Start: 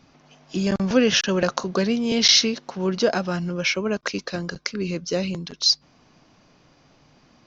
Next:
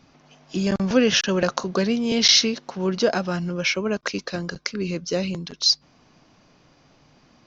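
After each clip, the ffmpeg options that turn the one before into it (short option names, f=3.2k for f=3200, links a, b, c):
-af anull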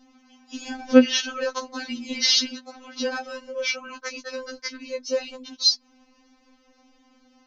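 -af "afftfilt=real='re*3.46*eq(mod(b,12),0)':imag='im*3.46*eq(mod(b,12),0)':win_size=2048:overlap=0.75,volume=-1dB"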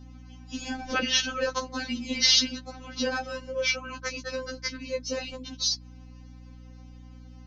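-af "aeval=exprs='val(0)+0.00562*(sin(2*PI*60*n/s)+sin(2*PI*2*60*n/s)/2+sin(2*PI*3*60*n/s)/3+sin(2*PI*4*60*n/s)/4+sin(2*PI*5*60*n/s)/5)':c=same,afftfilt=real='re*lt(hypot(re,im),0.891)':imag='im*lt(hypot(re,im),0.891)':win_size=1024:overlap=0.75"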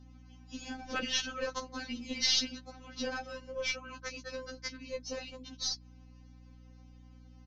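-af "aeval=exprs='0.355*(cos(1*acos(clip(val(0)/0.355,-1,1)))-cos(1*PI/2))+0.0141*(cos(8*acos(clip(val(0)/0.355,-1,1)))-cos(8*PI/2))':c=same,aresample=16000,aresample=44100,volume=-8dB"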